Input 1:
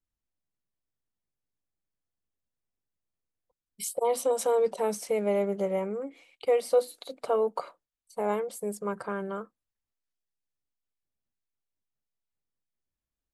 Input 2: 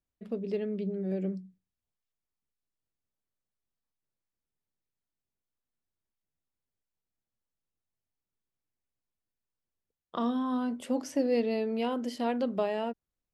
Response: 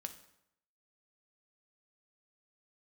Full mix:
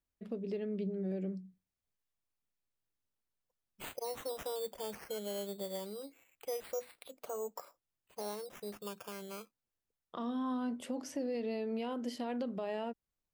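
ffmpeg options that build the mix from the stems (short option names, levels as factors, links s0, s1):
-filter_complex "[0:a]acrusher=samples=9:mix=1:aa=0.000001:lfo=1:lforange=5.4:lforate=0.24,highshelf=f=8800:g=9,volume=0.282[s0];[1:a]alimiter=limit=0.0794:level=0:latency=1:release=38,volume=0.794[s1];[s0][s1]amix=inputs=2:normalize=0,alimiter=level_in=1.78:limit=0.0631:level=0:latency=1:release=235,volume=0.562"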